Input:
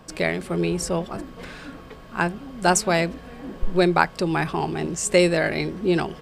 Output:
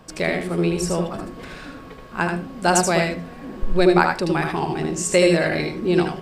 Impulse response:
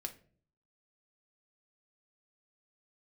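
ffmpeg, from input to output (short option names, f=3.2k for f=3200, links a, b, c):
-filter_complex "[0:a]asplit=2[a][b];[1:a]atrim=start_sample=2205,adelay=77[c];[b][c]afir=irnorm=-1:irlink=0,volume=-1.5dB[d];[a][d]amix=inputs=2:normalize=0"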